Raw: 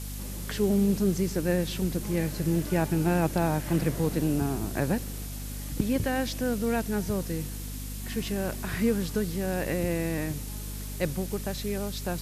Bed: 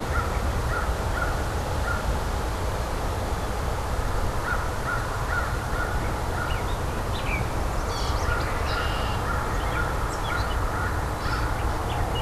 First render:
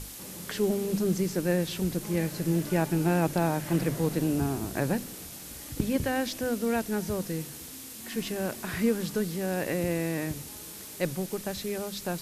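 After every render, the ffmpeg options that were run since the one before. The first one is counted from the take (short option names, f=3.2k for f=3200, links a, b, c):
-af "bandreject=f=50:t=h:w=6,bandreject=f=100:t=h:w=6,bandreject=f=150:t=h:w=6,bandreject=f=200:t=h:w=6,bandreject=f=250:t=h:w=6"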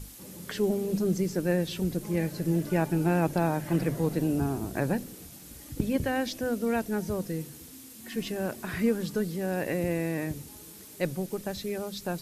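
-af "afftdn=nr=7:nf=-43"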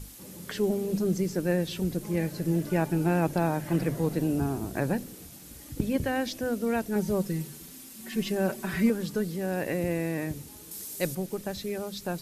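-filter_complex "[0:a]asettb=1/sr,asplit=3[a][b][c];[a]atrim=end=6.954[d];[b]atrim=start=6.95:end=8.9,asetpts=PTS-STARTPTS,afade=t=in:d=0.004:c=qsin,afade=t=out:st=1.946:d=0.004:c=qsin,aecho=1:1:5.2:0.76,atrim=end_sample=85995[e];[c]atrim=start=8.896[f];[d][e]acrossfade=d=0.004:c1=hsin:c2=qsin[g];[g][f]acrossfade=d=0.004:c1=qsin:c2=hsin,asettb=1/sr,asplit=3[h][i][j];[h]atrim=end=10.714[k];[i]atrim=start=10.71:end=11.15,asetpts=PTS-STARTPTS,afade=t=in:d=0.004:c=qsin,afade=t=out:st=0.436:d=0.004:c=qsin,bass=f=250:g=-1,treble=f=4k:g=10[l];[j]atrim=start=11.146[m];[k][l]acrossfade=d=0.004:c1=hsin:c2=qsin[n];[n][m]acrossfade=d=0.004:c1=qsin:c2=hsin"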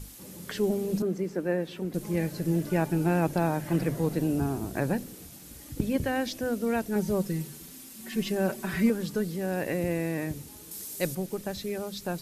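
-filter_complex "[0:a]asettb=1/sr,asplit=3[a][b][c];[a]atrim=end=1.024[d];[b]atrim=start=1.02:end=1.94,asetpts=PTS-STARTPTS,afade=t=in:d=0.004:c=qsin,afade=t=out:st=0.916:d=0.004:c=qsin,acrossover=split=190 2500:gain=0.141 1 0.251[e][f][g];[e][f][g]amix=inputs=3:normalize=0[h];[c]atrim=start=1.936[i];[d][h]acrossfade=d=0.004:c1=hsin:c2=qsin[j];[j][i]acrossfade=d=0.004:c1=qsin:c2=hsin"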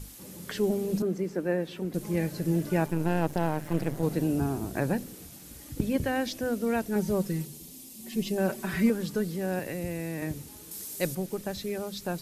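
-filter_complex "[0:a]asettb=1/sr,asplit=3[a][b][c];[a]atrim=end=2.864[d];[b]atrim=start=2.86:end=4.03,asetpts=PTS-STARTPTS,afade=t=in:d=0.004:c=qsin,afade=t=out:st=1.166:d=0.004:c=qsin,aeval=exprs='if(lt(val(0),0),0.251*val(0),val(0))':c=same[e];[c]atrim=start=4.026[f];[d][e]acrossfade=d=0.004:c1=hsin:c2=qsin[g];[g][f]acrossfade=d=0.004:c1=qsin:c2=hsin,asettb=1/sr,asplit=3[h][i][j];[h]atrim=end=7.454[k];[i]atrim=start=7.45:end=8.38,asetpts=PTS-STARTPTS,afade=t=in:d=0.004:c=qsin,afade=t=out:st=0.926:d=0.004:c=qsin,equalizer=f=1.5k:t=o:w=0.97:g=-14.5[l];[j]atrim=start=8.376[m];[k][l]acrossfade=d=0.004:c1=hsin:c2=qsin[n];[n][m]acrossfade=d=0.004:c1=qsin:c2=hsin,asettb=1/sr,asplit=3[o][p][q];[o]atrim=end=9.594[r];[p]atrim=start=9.59:end=10.22,asetpts=PTS-STARTPTS,afade=t=in:d=0.004:c=qsin,afade=t=out:st=0.626:d=0.004:c=qsin,acrossover=split=150|3000[s][t][u];[t]acompressor=threshold=-32dB:ratio=6:attack=3.2:release=140:knee=2.83:detection=peak[v];[s][v][u]amix=inputs=3:normalize=0[w];[q]atrim=start=10.216[x];[r][w]acrossfade=d=0.004:c1=hsin:c2=qsin[y];[y][x]acrossfade=d=0.004:c1=qsin:c2=hsin"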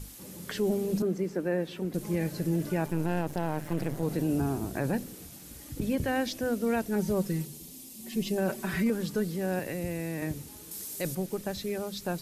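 -af "alimiter=limit=-19.5dB:level=0:latency=1:release=17"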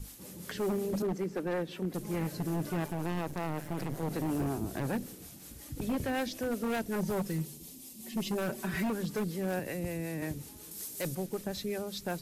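-filter_complex "[0:a]acrossover=split=400[a][b];[a]aeval=exprs='val(0)*(1-0.5/2+0.5/2*cos(2*PI*5.4*n/s))':c=same[c];[b]aeval=exprs='val(0)*(1-0.5/2-0.5/2*cos(2*PI*5.4*n/s))':c=same[d];[c][d]amix=inputs=2:normalize=0,aeval=exprs='0.0501*(abs(mod(val(0)/0.0501+3,4)-2)-1)':c=same"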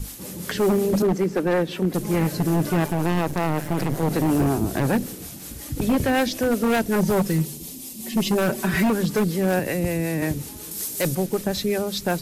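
-af "volume=12dB"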